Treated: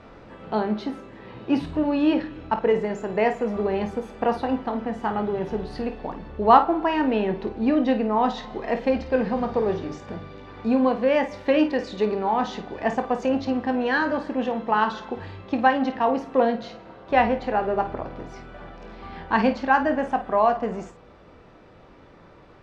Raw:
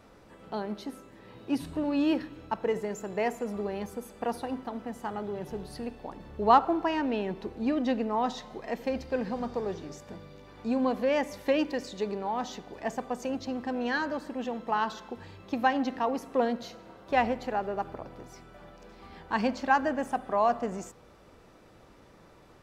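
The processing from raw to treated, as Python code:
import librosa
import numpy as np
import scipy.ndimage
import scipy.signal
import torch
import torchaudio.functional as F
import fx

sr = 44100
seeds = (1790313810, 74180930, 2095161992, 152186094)

p1 = scipy.signal.sosfilt(scipy.signal.butter(2, 3500.0, 'lowpass', fs=sr, output='sos'), x)
p2 = fx.rider(p1, sr, range_db=4, speed_s=0.5)
p3 = p1 + (p2 * librosa.db_to_amplitude(1.0))
y = fx.room_early_taps(p3, sr, ms=(23, 52), db=(-10.0, -11.0))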